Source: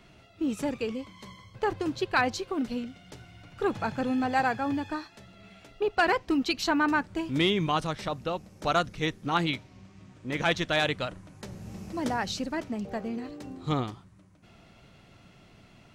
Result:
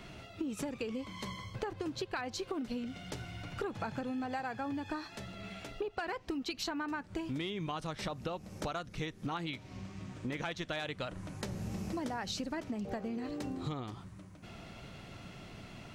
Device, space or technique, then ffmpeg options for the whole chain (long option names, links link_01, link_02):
serial compression, peaks first: -af "acompressor=threshold=-35dB:ratio=6,acompressor=threshold=-43dB:ratio=2.5,volume=6dB"